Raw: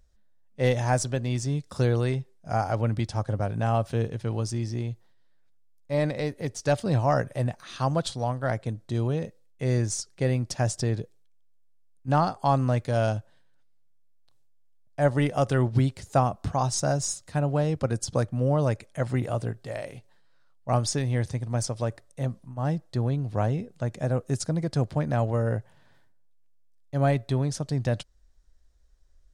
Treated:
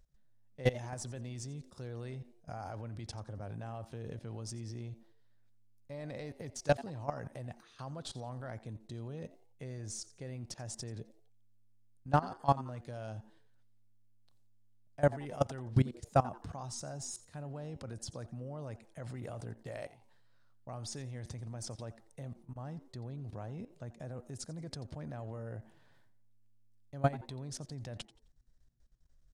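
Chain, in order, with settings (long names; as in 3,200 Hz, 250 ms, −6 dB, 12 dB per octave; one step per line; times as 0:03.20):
output level in coarse steps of 20 dB
echo with shifted repeats 87 ms, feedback 31%, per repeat +110 Hz, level −18.5 dB
level −2.5 dB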